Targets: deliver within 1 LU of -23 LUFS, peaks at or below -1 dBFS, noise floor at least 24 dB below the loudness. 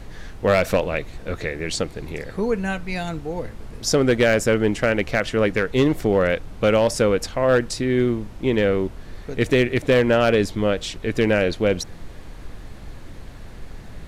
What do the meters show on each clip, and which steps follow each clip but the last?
clipped samples 0.7%; clipping level -10.0 dBFS; noise floor -39 dBFS; noise floor target -45 dBFS; loudness -21.0 LUFS; peak level -10.0 dBFS; loudness target -23.0 LUFS
-> clip repair -10 dBFS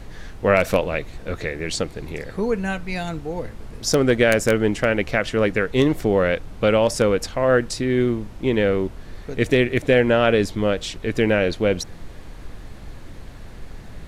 clipped samples 0.0%; noise floor -39 dBFS; noise floor target -45 dBFS
-> noise print and reduce 6 dB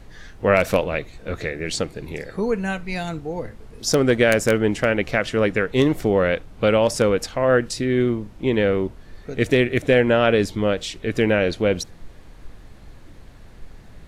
noise floor -45 dBFS; loudness -21.0 LUFS; peak level -1.0 dBFS; loudness target -23.0 LUFS
-> trim -2 dB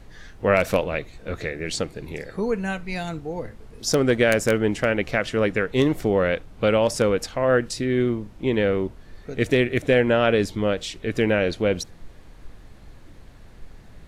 loudness -23.0 LUFS; peak level -3.0 dBFS; noise floor -47 dBFS

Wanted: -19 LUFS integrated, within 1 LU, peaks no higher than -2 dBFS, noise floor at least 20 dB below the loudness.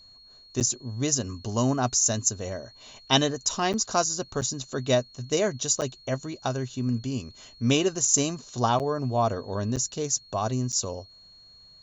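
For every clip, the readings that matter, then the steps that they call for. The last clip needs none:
dropouts 7; longest dropout 8.1 ms; steady tone 4.3 kHz; tone level -50 dBFS; loudness -26.5 LUFS; peak level -6.5 dBFS; loudness target -19.0 LUFS
-> interpolate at 0.60/3.73/4.41/5.81/8.79/9.76/10.72 s, 8.1 ms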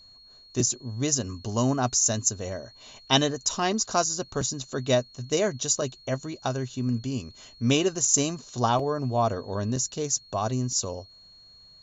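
dropouts 0; steady tone 4.3 kHz; tone level -50 dBFS
-> band-stop 4.3 kHz, Q 30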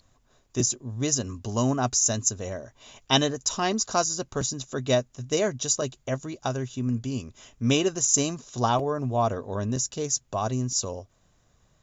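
steady tone not found; loudness -26.5 LUFS; peak level -6.5 dBFS; loudness target -19.0 LUFS
-> trim +7.5 dB; peak limiter -2 dBFS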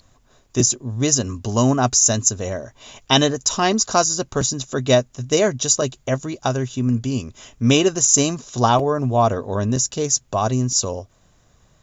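loudness -19.0 LUFS; peak level -2.0 dBFS; noise floor -58 dBFS

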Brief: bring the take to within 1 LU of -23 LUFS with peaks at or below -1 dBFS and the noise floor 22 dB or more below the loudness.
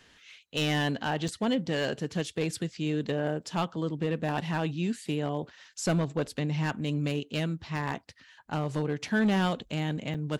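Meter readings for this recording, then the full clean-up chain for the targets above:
clipped samples 0.8%; clipping level -20.5 dBFS; dropouts 2; longest dropout 5.2 ms; loudness -30.5 LUFS; peak level -20.5 dBFS; loudness target -23.0 LUFS
-> clip repair -20.5 dBFS; interpolate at 1.28/10.14 s, 5.2 ms; trim +7.5 dB

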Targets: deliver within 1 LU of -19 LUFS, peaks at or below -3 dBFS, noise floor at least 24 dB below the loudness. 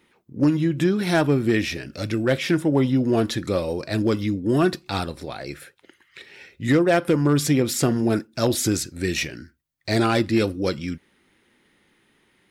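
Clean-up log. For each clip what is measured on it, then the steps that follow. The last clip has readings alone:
clipped samples 0.3%; clipping level -11.0 dBFS; loudness -22.5 LUFS; peak level -11.0 dBFS; loudness target -19.0 LUFS
-> clip repair -11 dBFS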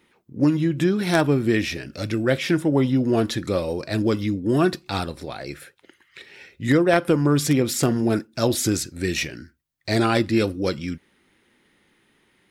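clipped samples 0.0%; loudness -22.0 LUFS; peak level -2.0 dBFS; loudness target -19.0 LUFS
-> trim +3 dB; peak limiter -3 dBFS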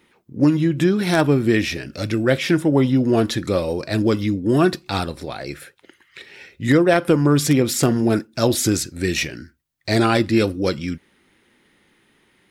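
loudness -19.0 LUFS; peak level -3.0 dBFS; noise floor -61 dBFS

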